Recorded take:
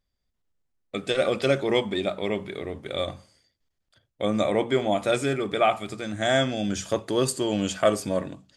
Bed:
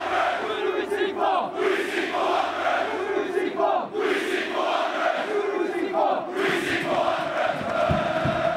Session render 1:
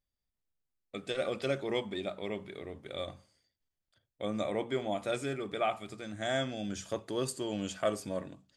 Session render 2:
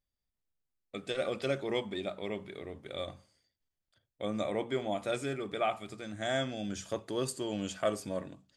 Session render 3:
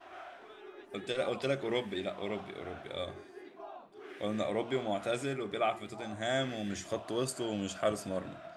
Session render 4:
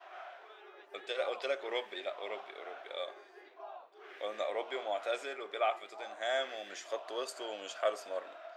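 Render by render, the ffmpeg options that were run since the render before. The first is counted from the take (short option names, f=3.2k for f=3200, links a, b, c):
-af "volume=-10dB"
-af anull
-filter_complex "[1:a]volume=-25dB[a];[0:a][a]amix=inputs=2:normalize=0"
-af "highpass=f=480:w=0.5412,highpass=f=480:w=1.3066,equalizer=f=9.6k:w=1.3:g=-12"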